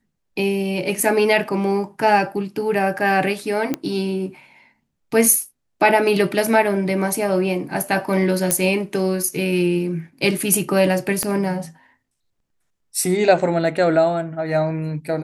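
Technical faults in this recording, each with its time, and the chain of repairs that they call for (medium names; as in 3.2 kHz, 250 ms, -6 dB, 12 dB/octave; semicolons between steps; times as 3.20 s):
3.74 s: pop -9 dBFS
8.51 s: pop -2 dBFS
11.23 s: pop -7 dBFS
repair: de-click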